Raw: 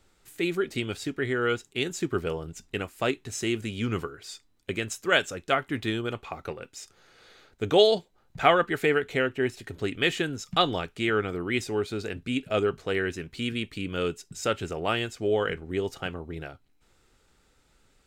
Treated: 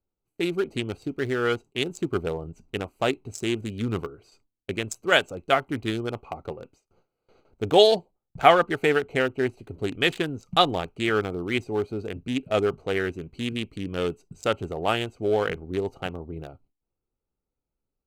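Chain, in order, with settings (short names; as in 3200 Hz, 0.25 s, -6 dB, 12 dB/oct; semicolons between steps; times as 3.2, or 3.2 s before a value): Wiener smoothing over 25 samples; dynamic EQ 790 Hz, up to +5 dB, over -43 dBFS, Q 2; gate with hold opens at -51 dBFS; high shelf 6700 Hz +10.5 dB; gain +1.5 dB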